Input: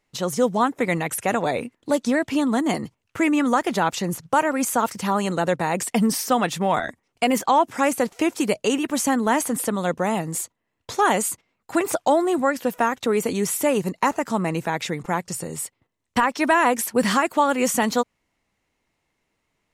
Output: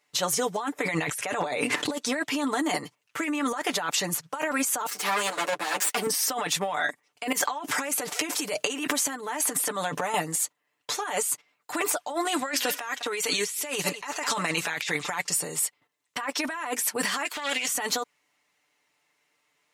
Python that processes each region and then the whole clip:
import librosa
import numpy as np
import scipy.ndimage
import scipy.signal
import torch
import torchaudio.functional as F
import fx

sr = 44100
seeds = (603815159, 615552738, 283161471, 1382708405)

y = fx.chain(x, sr, fx.lowpass(hz=10000.0, slope=12),
    fx.env_flatten(amount_pct=100), at=(0.83, 1.91))
y = fx.chain(y, sr, fx.lower_of_two(delay_ms=9.1),
    fx.highpass(hz=220.0, slope=12), at=(4.87, 6.07))
y = fx.chain(y, sr, fx.highpass(hz=58.0, slope=12),
    fx.transient(attack_db=-6, sustain_db=7),
    fx.over_compress(threshold_db=-29.0, ratio=-1.0), at=(7.32, 10.14))
y = fx.chain(y, sr, fx.peak_eq(hz=4000.0, db=11.0, octaves=2.8),
    fx.echo_single(ms=204, db=-22.5), at=(12.25, 15.29))
y = fx.chain(y, sr, fx.halfwave_gain(db=-12.0),
    fx.weighting(curve='D'), at=(17.25, 17.68))
y = fx.highpass(y, sr, hz=1000.0, slope=6)
y = y + 0.7 * np.pad(y, (int(6.8 * sr / 1000.0), 0))[:len(y)]
y = fx.over_compress(y, sr, threshold_db=-28.0, ratio=-1.0)